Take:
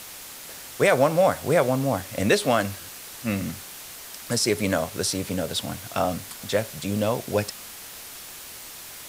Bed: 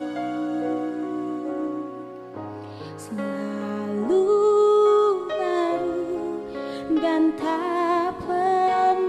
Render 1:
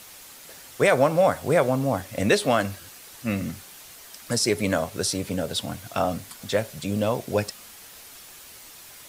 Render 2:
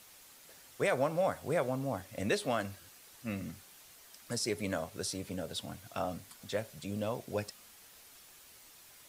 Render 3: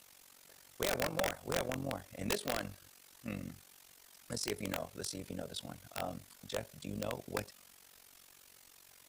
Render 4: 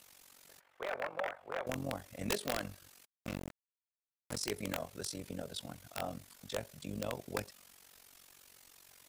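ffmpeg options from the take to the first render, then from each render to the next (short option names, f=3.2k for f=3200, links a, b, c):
-af "afftdn=nr=6:nf=-41"
-af "volume=-11.5dB"
-af "tremolo=f=46:d=0.857,aeval=exprs='(mod(16.8*val(0)+1,2)-1)/16.8':c=same"
-filter_complex "[0:a]asettb=1/sr,asplit=3[a][b][c];[a]atrim=end=0.604[d];[b]atrim=start=0.6:end=1.67,asetpts=PTS-STARTPTS,afade=t=in:d=0.004:c=qsin,afade=t=out:st=1.066:d=0.004:c=qsin,acrossover=split=480 2500:gain=0.126 1 0.0631[e][f][g];[e][f][g]amix=inputs=3:normalize=0[h];[c]atrim=start=1.666[i];[d][h]acrossfade=d=0.004:c1=hsin:c2=qsin[j];[j][i]acrossfade=d=0.004:c1=qsin:c2=hsin,asplit=3[k][l][m];[k]afade=t=out:st=3.04:d=0.02[n];[l]acrusher=bits=5:mix=0:aa=0.5,afade=t=in:st=3.04:d=0.02,afade=t=out:st=4.36:d=0.02[o];[m]afade=t=in:st=4.36:d=0.02[p];[n][o][p]amix=inputs=3:normalize=0"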